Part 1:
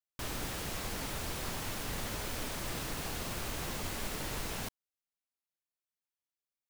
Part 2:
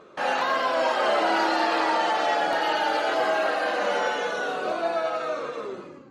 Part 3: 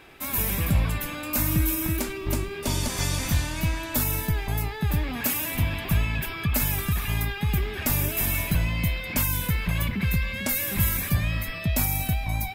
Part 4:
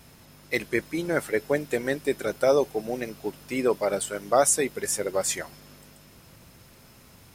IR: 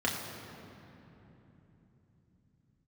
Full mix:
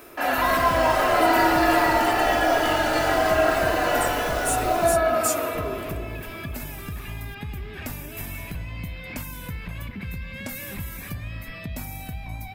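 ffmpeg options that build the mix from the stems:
-filter_complex "[0:a]adelay=250,volume=1.5dB[link_01];[1:a]aecho=1:1:3:0.65,volume=-3.5dB,asplit=2[link_02][link_03];[link_03]volume=-8dB[link_04];[2:a]highshelf=frequency=4700:gain=-5.5,acompressor=threshold=-30dB:ratio=3,volume=-2.5dB,asplit=2[link_05][link_06];[link_06]volume=-21.5dB[link_07];[3:a]aemphasis=mode=production:type=riaa,asoftclip=type=tanh:threshold=-5dB,tremolo=f=1.9:d=0.53,volume=-10dB[link_08];[4:a]atrim=start_sample=2205[link_09];[link_04][link_07]amix=inputs=2:normalize=0[link_10];[link_10][link_09]afir=irnorm=-1:irlink=0[link_11];[link_01][link_02][link_05][link_08][link_11]amix=inputs=5:normalize=0"

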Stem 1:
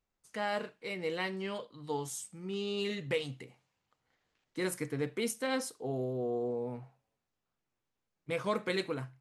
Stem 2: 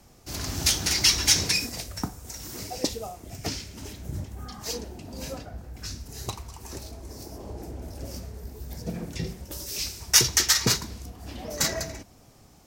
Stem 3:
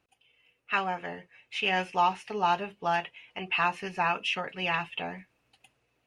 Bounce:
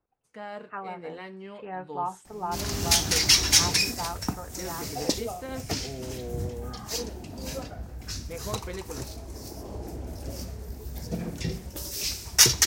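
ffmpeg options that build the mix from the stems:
ffmpeg -i stem1.wav -i stem2.wav -i stem3.wav -filter_complex "[0:a]highshelf=frequency=2200:gain=-9.5,volume=-3.5dB[link_01];[1:a]adelay=2250,volume=1dB[link_02];[2:a]lowpass=frequency=1400:width=0.5412,lowpass=frequency=1400:width=1.3066,volume=-6dB[link_03];[link_01][link_02][link_03]amix=inputs=3:normalize=0" out.wav

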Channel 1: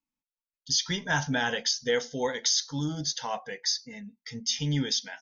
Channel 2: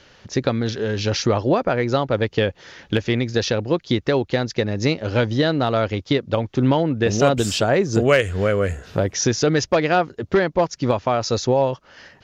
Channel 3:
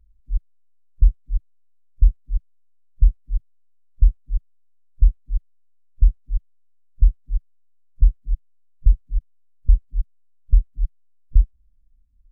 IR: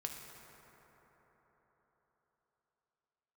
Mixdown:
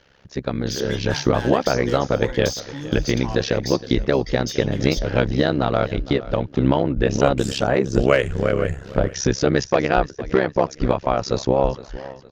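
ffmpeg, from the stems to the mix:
-filter_complex "[0:a]highpass=110,asoftclip=type=hard:threshold=-23.5dB,acompressor=threshold=-32dB:ratio=3,volume=2dB,asplit=2[link_01][link_02];[link_02]volume=-20dB[link_03];[1:a]highshelf=frequency=4300:gain=-7,dynaudnorm=framelen=400:gausssize=3:maxgain=11.5dB,tremolo=f=67:d=0.947,volume=-1.5dB,asplit=2[link_04][link_05];[link_05]volume=-17dB[link_06];[2:a]adelay=1950,volume=-13.5dB[link_07];[link_03][link_06]amix=inputs=2:normalize=0,aecho=0:1:463|926|1389|1852|2315:1|0.36|0.13|0.0467|0.0168[link_08];[link_01][link_04][link_07][link_08]amix=inputs=4:normalize=0"

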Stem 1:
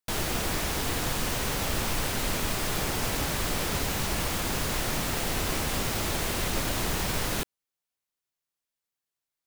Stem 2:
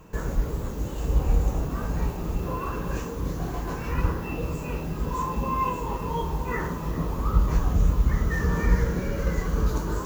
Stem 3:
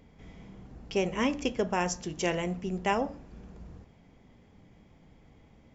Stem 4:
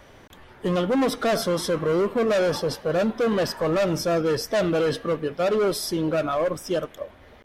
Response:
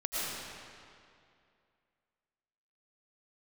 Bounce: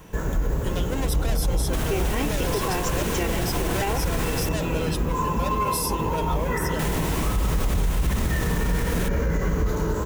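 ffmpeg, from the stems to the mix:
-filter_complex "[0:a]adelay=1650,volume=1dB,asplit=3[link_01][link_02][link_03];[link_01]atrim=end=4.49,asetpts=PTS-STARTPTS,afade=type=out:start_time=4.486:duration=0.004:curve=hsin[link_04];[link_02]atrim=start=4.49:end=6.79,asetpts=PTS-STARTPTS,volume=0[link_05];[link_03]atrim=start=6.79,asetpts=PTS-STARTPTS,afade=type=in:duration=0.004:curve=hsin[link_06];[link_04][link_05][link_06]concat=n=3:v=0:a=1[link_07];[1:a]volume=0dB,asplit=2[link_08][link_09];[link_09]volume=-5.5dB[link_10];[2:a]aecho=1:1:2.6:0.65,adelay=950,volume=2.5dB[link_11];[3:a]crystalizer=i=7.5:c=0,volume=-11.5dB[link_12];[4:a]atrim=start_sample=2205[link_13];[link_10][link_13]afir=irnorm=-1:irlink=0[link_14];[link_07][link_08][link_11][link_12][link_14]amix=inputs=5:normalize=0,equalizer=frequency=4600:width=2.7:gain=-4.5,bandreject=frequency=1200:width=12,alimiter=limit=-15dB:level=0:latency=1:release=50"

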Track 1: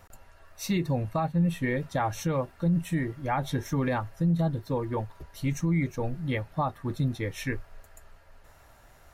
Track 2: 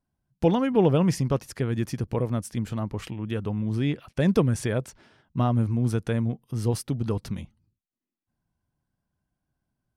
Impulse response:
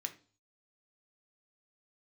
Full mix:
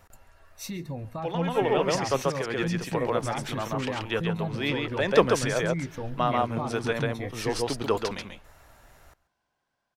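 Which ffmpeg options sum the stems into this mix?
-filter_complex "[0:a]alimiter=level_in=1dB:limit=-24dB:level=0:latency=1:release=304,volume=-1dB,volume=-2.5dB,asplit=4[link_01][link_02][link_03][link_04];[link_02]volume=-17.5dB[link_05];[link_03]volume=-20.5dB[link_06];[1:a]acrossover=split=420 6400:gain=0.0891 1 0.141[link_07][link_08][link_09];[link_07][link_08][link_09]amix=inputs=3:normalize=0,dynaudnorm=framelen=210:gausssize=7:maxgain=11dB,adelay=800,volume=-4.5dB,asplit=3[link_10][link_11][link_12];[link_11]volume=-13.5dB[link_13];[link_12]volume=-5.5dB[link_14];[link_04]apad=whole_len=474546[link_15];[link_10][link_15]sidechaincompress=threshold=-39dB:ratio=8:attack=16:release=390[link_16];[2:a]atrim=start_sample=2205[link_17];[link_05][link_13]amix=inputs=2:normalize=0[link_18];[link_18][link_17]afir=irnorm=-1:irlink=0[link_19];[link_06][link_14]amix=inputs=2:normalize=0,aecho=0:1:137:1[link_20];[link_01][link_16][link_19][link_20]amix=inputs=4:normalize=0,dynaudnorm=framelen=250:gausssize=11:maxgain=3.5dB"

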